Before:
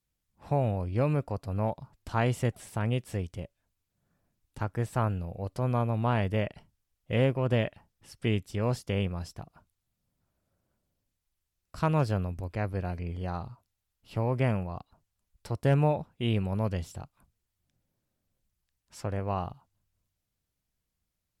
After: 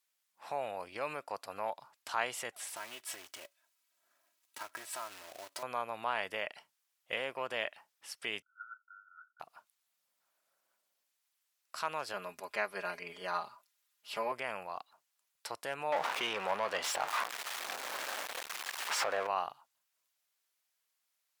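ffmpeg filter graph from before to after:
-filter_complex "[0:a]asettb=1/sr,asplit=3[s0][s1][s2];[s0]atrim=end=2.764[s3];[s1]atrim=start=2.76:end=5.63,asetpts=PTS-STARTPTS,afade=t=in:d=0.004:c=qsin,afade=t=out:st=2.866:d=0.004:c=qsin,aecho=1:1:3.1:0.79,atrim=end_sample=126567,acompressor=threshold=0.0126:ratio=8:attack=3.2:release=140:knee=1:detection=peak,acrusher=bits=3:mode=log:mix=0:aa=0.000001[s4];[s2]atrim=start=5.626[s5];[s3][s4]acrossfade=d=0.004:c1=hsin:c2=qsin[s6];[s6][s5]acrossfade=d=0.004:c1=qsin:c2=hsin,asettb=1/sr,asplit=3[s7][s8][s9];[s7]atrim=end=8.424[s10];[s8]atrim=start=8.42:end=9.4,asetpts=PTS-STARTPTS,afade=t=in:d=0.004:c=qsin,afade=t=out:st=0.976:d=0.004:c=qsin,asuperpass=centerf=1400:order=12:qfactor=6.3,aecho=1:1:2:0.54,atrim=end_sample=43218[s11];[s9]atrim=start=9.396[s12];[s10][s11]acrossfade=d=0.004:c1=hsin:c2=qsin[s13];[s13][s12]acrossfade=d=0.004:c1=qsin:c2=hsin,asettb=1/sr,asplit=3[s14][s15][s16];[s14]atrim=end=12.134[s17];[s15]atrim=start=12.13:end=14.32,asetpts=PTS-STARTPTS,afade=t=in:d=0.004:c=qsin,afade=t=out:st=2.186:d=0.004:c=qsin,bandreject=f=800:w=17,aecho=1:1:4.9:0.88,atrim=end_sample=96579[s18];[s16]atrim=start=14.316[s19];[s17][s18]acrossfade=d=0.004:c1=hsin:c2=qsin[s20];[s20][s19]acrossfade=d=0.004:c1=qsin:c2=hsin,asettb=1/sr,asplit=3[s21][s22][s23];[s21]atrim=end=15.924[s24];[s22]atrim=start=15.92:end=19.27,asetpts=PTS-STARTPTS,afade=t=in:d=0.004:c=qsin,afade=t=out:st=3.346:d=0.004:c=qsin,aeval=exprs='val(0)+0.5*0.0112*sgn(val(0))':c=same,asplit=2[s25][s26];[s26]highpass=f=720:p=1,volume=14.1,asoftclip=type=tanh:threshold=0.158[s27];[s25][s27]amix=inputs=2:normalize=0,lowpass=f=1100:p=1,volume=0.501[s28];[s23]atrim=start=19.266[s29];[s24][s28]acrossfade=d=0.004:c1=hsin:c2=qsin[s30];[s30][s29]acrossfade=d=0.004:c1=qsin:c2=hsin,alimiter=limit=0.0841:level=0:latency=1:release=175,highpass=940,volume=1.88"

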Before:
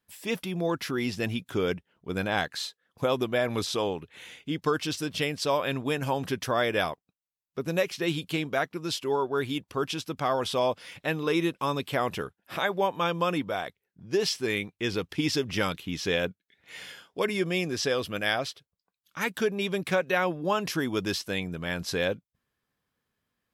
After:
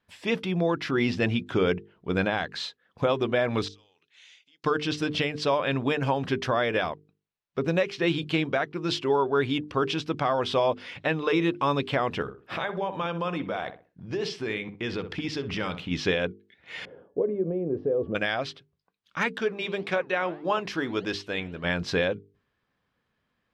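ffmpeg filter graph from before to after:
-filter_complex "[0:a]asettb=1/sr,asplit=3[s0][s1][s2];[s0]atrim=end=3.684[s3];[s1]atrim=start=3.68:end=4.64,asetpts=PTS-STARTPTS,afade=t=in:d=0.004:c=qsin,afade=t=out:st=0.956:d=0.004:c=qsin,acompressor=threshold=0.01:ratio=16:attack=3.2:release=140:knee=1:detection=peak,bandpass=f=6100:t=q:w=1.9[s4];[s2]atrim=start=4.636[s5];[s3][s4]acrossfade=d=0.004:c1=hsin:c2=qsin[s6];[s6][s5]acrossfade=d=0.004:c1=qsin:c2=hsin,asettb=1/sr,asplit=3[s7][s8][s9];[s7]atrim=end=12.224[s10];[s8]atrim=start=12.22:end=15.91,asetpts=PTS-STARTPTS,afade=t=in:d=0.004:c=qsin,afade=t=out:st=3.686:d=0.004:c=qsin,acompressor=threshold=0.02:ratio=3:attack=3.2:release=140:knee=1:detection=peak,asplit=2[s11][s12];[s12]adelay=63,lowpass=f=1500:p=1,volume=0.335,asplit=2[s13][s14];[s14]adelay=63,lowpass=f=1500:p=1,volume=0.32,asplit=2[s15][s16];[s16]adelay=63,lowpass=f=1500:p=1,volume=0.32,asplit=2[s17][s18];[s18]adelay=63,lowpass=f=1500:p=1,volume=0.32[s19];[s11][s13][s15][s17][s19]amix=inputs=5:normalize=0,atrim=end_sample=162729[s20];[s9]atrim=start=15.906[s21];[s10][s20]acrossfade=d=0.004:c1=hsin:c2=qsin[s22];[s22][s21]acrossfade=d=0.004:c1=qsin:c2=hsin,asettb=1/sr,asplit=3[s23][s24][s25];[s23]atrim=end=16.854[s26];[s24]atrim=start=16.85:end=18.15,asetpts=PTS-STARTPTS,afade=t=in:d=0.004:c=qsin,afade=t=out:st=1.296:d=0.004:c=qsin,bandreject=f=283.6:t=h:w=4,bandreject=f=567.2:t=h:w=4,bandreject=f=850.8:t=h:w=4,bandreject=f=1134.4:t=h:w=4,bandreject=f=1418:t=h:w=4,bandreject=f=1701.6:t=h:w=4,bandreject=f=1985.2:t=h:w=4,bandreject=f=2268.8:t=h:w=4,bandreject=f=2552.4:t=h:w=4,bandreject=f=2836:t=h:w=4,bandreject=f=3119.6:t=h:w=4,bandreject=f=3403.2:t=h:w=4,bandreject=f=3686.8:t=h:w=4,bandreject=f=3970.4:t=h:w=4,bandreject=f=4254:t=h:w=4,bandreject=f=4537.6:t=h:w=4,bandreject=f=4821.2:t=h:w=4,bandreject=f=5104.8:t=h:w=4,bandreject=f=5388.4:t=h:w=4,bandreject=f=5672:t=h:w=4,bandreject=f=5955.6:t=h:w=4,bandreject=f=6239.2:t=h:w=4,bandreject=f=6522.8:t=h:w=4,bandreject=f=6806.4:t=h:w=4,bandreject=f=7090:t=h:w=4,bandreject=f=7373.6:t=h:w=4,bandreject=f=7657.2:t=h:w=4,bandreject=f=7940.8:t=h:w=4,bandreject=f=8224.4:t=h:w=4,bandreject=f=8508:t=h:w=4,bandreject=f=8791.6:t=h:w=4,bandreject=f=9075.2:t=h:w=4,acompressor=threshold=0.0251:ratio=12:attack=3.2:release=140:knee=1:detection=peak,lowpass=f=470:t=q:w=2.6[s27];[s25]atrim=start=18.146[s28];[s26][s27]acrossfade=d=0.004:c1=hsin:c2=qsin[s29];[s29][s28]acrossfade=d=0.004:c1=qsin:c2=hsin,asettb=1/sr,asplit=3[s30][s31][s32];[s30]atrim=end=19.384[s33];[s31]atrim=start=19.38:end=21.64,asetpts=PTS-STARTPTS,afade=t=in:d=0.004:c=qsin,afade=t=out:st=2.256:d=0.004:c=qsin,equalizer=f=150:w=1.3:g=-6.5,flanger=delay=2.2:depth=8:regen=-88:speed=1.7:shape=triangular[s34];[s32]atrim=start=21.636[s35];[s33][s34]acrossfade=d=0.004:c1=hsin:c2=qsin[s36];[s36][s35]acrossfade=d=0.004:c1=qsin:c2=hsin,lowpass=3700,bandreject=f=50:t=h:w=6,bandreject=f=100:t=h:w=6,bandreject=f=150:t=h:w=6,bandreject=f=200:t=h:w=6,bandreject=f=250:t=h:w=6,bandreject=f=300:t=h:w=6,bandreject=f=350:t=h:w=6,bandreject=f=400:t=h:w=6,bandreject=f=450:t=h:w=6,alimiter=limit=0.1:level=0:latency=1:release=318,volume=2"

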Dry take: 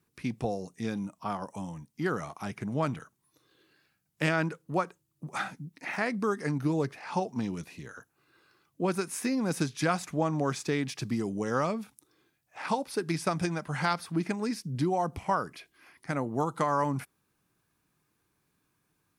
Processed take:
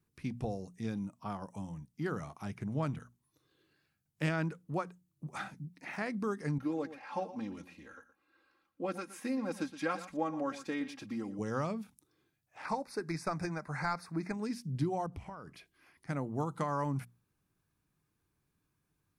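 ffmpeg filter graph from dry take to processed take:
-filter_complex "[0:a]asettb=1/sr,asplit=3[s0][s1][s2];[s0]atrim=end=6.584[s3];[s1]atrim=start=6.58:end=11.39,asetpts=PTS-STARTPTS,afade=t=in:d=0.004:c=qsin,afade=t=out:st=4.806:d=0.004:c=qsin,bass=f=250:g=-11,treble=f=4000:g=-9,aecho=1:1:3.7:0.77,atrim=end_sample=212121,aecho=1:1:118:0.2,atrim=end_sample=212121[s4];[s2]atrim=start=11.386[s5];[s3][s4]acrossfade=d=0.004:c1=hsin:c2=qsin[s6];[s6][s5]acrossfade=d=0.004:c1=qsin:c2=hsin,asettb=1/sr,asplit=3[s7][s8][s9];[s7]atrim=end=12.654[s10];[s8]atrim=start=12.65:end=14.34,asetpts=PTS-STARTPTS,afade=t=in:d=0.004:c=qsin,afade=t=out:st=1.686:d=0.004:c=qsin,asplit=2[s11][s12];[s12]highpass=f=720:p=1,volume=2.82,asoftclip=type=tanh:threshold=0.2[s13];[s11][s13]amix=inputs=2:normalize=0,lowpass=f=3800:p=1,volume=0.501,asuperstop=centerf=3100:order=4:qfactor=1.8[s14];[s9]atrim=start=14.336[s15];[s10][s14]acrossfade=d=0.004:c1=hsin:c2=qsin[s16];[s16][s15]acrossfade=d=0.004:c1=qsin:c2=hsin,asettb=1/sr,asplit=3[s17][s18][s19];[s17]atrim=end=15.064[s20];[s18]atrim=start=15.06:end=15.54,asetpts=PTS-STARTPTS,afade=t=in:d=0.004:c=qsin,afade=t=out:st=0.476:d=0.004:c=qsin,highshelf=f=8300:g=-10,acompressor=threshold=0.0141:ratio=4:attack=3.2:release=140:knee=1:detection=peak[s21];[s19]atrim=start=15.536[s22];[s20][s21]acrossfade=d=0.004:c1=hsin:c2=qsin[s23];[s23][s22]acrossfade=d=0.004:c1=qsin:c2=hsin,lowshelf=f=160:g=12,bandreject=f=60:t=h:w=6,bandreject=f=120:t=h:w=6,bandreject=f=180:t=h:w=6,bandreject=f=240:t=h:w=6,volume=0.398"

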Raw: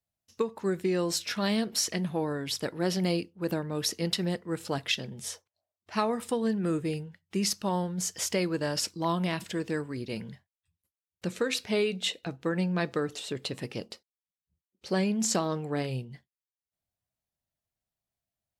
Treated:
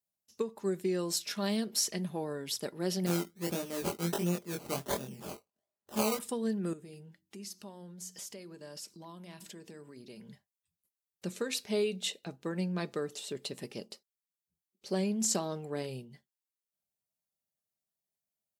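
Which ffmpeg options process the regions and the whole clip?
-filter_complex "[0:a]asettb=1/sr,asplit=3[s0][s1][s2];[s0]atrim=end=3.064[s3];[s1]atrim=start=3.06:end=6.19,asetpts=PTS-STARTPTS,afade=t=in:d=0.004:c=qsin,afade=t=out:st=3.126:d=0.004:c=qsin,acrusher=samples=20:mix=1:aa=0.000001:lfo=1:lforange=12:lforate=1.4,asplit=2[s4][s5];[s5]adelay=23,volume=0.75[s6];[s4][s6]amix=inputs=2:normalize=0,atrim=end_sample=138033[s7];[s2]atrim=start=6.186[s8];[s3][s7]acrossfade=d=0.004:c1=hsin:c2=qsin[s9];[s9][s8]acrossfade=d=0.004:c1=qsin:c2=hsin,asettb=1/sr,asplit=3[s10][s11][s12];[s10]atrim=end=6.734[s13];[s11]atrim=start=6.73:end=10.3,asetpts=PTS-STARTPTS,afade=t=in:d=0.004:c=qsin,afade=t=out:st=3.566:d=0.004:c=qsin,acompressor=threshold=0.00891:ratio=4:attack=3.2:release=140:knee=1:detection=peak,bandreject=f=45.81:t=h:w=4,bandreject=f=91.62:t=h:w=4,bandreject=f=137.43:t=h:w=4,bandreject=f=183.24:t=h:w=4,bandreject=f=229.05:t=h:w=4,bandreject=f=274.86:t=h:w=4,bandreject=f=320.67:t=h:w=4,bandreject=f=366.48:t=h:w=4[s14];[s12]atrim=start=10.296[s15];[s13][s14]acrossfade=d=0.004:c1=hsin:c2=qsin[s16];[s16][s15]acrossfade=d=0.004:c1=qsin:c2=hsin,highpass=f=420:p=1,equalizer=f=1700:w=0.35:g=-10.5,aecho=1:1:5:0.32,volume=1.26"

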